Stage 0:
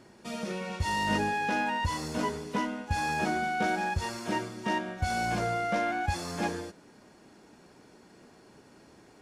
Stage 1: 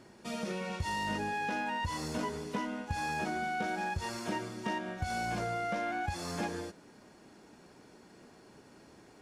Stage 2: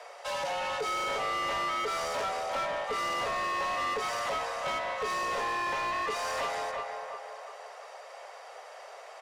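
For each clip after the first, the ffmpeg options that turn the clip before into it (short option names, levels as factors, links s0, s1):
-af "acompressor=threshold=0.0316:ratio=6,volume=0.891"
-filter_complex "[0:a]asplit=2[s0][s1];[s1]adelay=349,lowpass=f=2000:p=1,volume=0.422,asplit=2[s2][s3];[s3]adelay=349,lowpass=f=2000:p=1,volume=0.46,asplit=2[s4][s5];[s5]adelay=349,lowpass=f=2000:p=1,volume=0.46,asplit=2[s6][s7];[s7]adelay=349,lowpass=f=2000:p=1,volume=0.46,asplit=2[s8][s9];[s9]adelay=349,lowpass=f=2000:p=1,volume=0.46[s10];[s0][s2][s4][s6][s8][s10]amix=inputs=6:normalize=0,afreqshift=350,asplit=2[s11][s12];[s12]highpass=f=720:p=1,volume=12.6,asoftclip=type=tanh:threshold=0.1[s13];[s11][s13]amix=inputs=2:normalize=0,lowpass=f=4500:p=1,volume=0.501,volume=0.596"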